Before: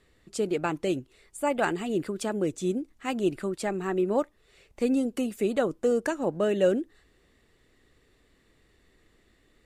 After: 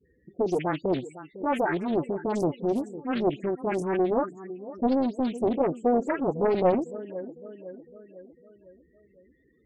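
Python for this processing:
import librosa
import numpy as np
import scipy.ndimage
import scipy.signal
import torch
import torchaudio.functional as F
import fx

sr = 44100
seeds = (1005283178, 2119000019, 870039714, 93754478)

p1 = fx.spec_delay(x, sr, highs='late', ms=207)
p2 = fx.echo_feedback(p1, sr, ms=504, feedback_pct=51, wet_db=-16)
p3 = np.clip(p2, -10.0 ** (-26.5 / 20.0), 10.0 ** (-26.5 / 20.0))
p4 = p2 + (p3 * 10.0 ** (-6.5 / 20.0))
p5 = scipy.signal.sosfilt(scipy.signal.butter(4, 61.0, 'highpass', fs=sr, output='sos'), p4)
p6 = fx.spec_topn(p5, sr, count=16)
y = fx.doppler_dist(p6, sr, depth_ms=0.59)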